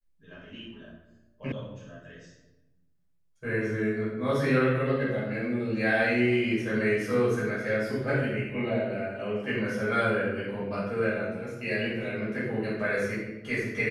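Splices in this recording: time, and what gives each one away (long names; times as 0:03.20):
0:01.52: cut off before it has died away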